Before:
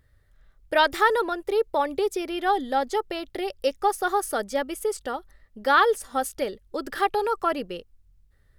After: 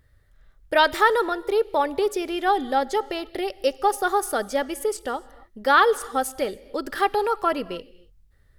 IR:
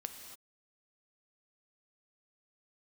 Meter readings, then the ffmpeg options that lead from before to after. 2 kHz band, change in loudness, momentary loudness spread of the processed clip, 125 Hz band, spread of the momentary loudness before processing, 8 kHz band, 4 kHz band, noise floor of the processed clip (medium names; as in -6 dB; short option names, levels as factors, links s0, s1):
+2.0 dB, +2.0 dB, 13 LU, no reading, 13 LU, +2.0 dB, +2.0 dB, -59 dBFS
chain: -filter_complex "[0:a]asplit=2[s0][s1];[1:a]atrim=start_sample=2205[s2];[s1][s2]afir=irnorm=-1:irlink=0,volume=0.376[s3];[s0][s3]amix=inputs=2:normalize=0"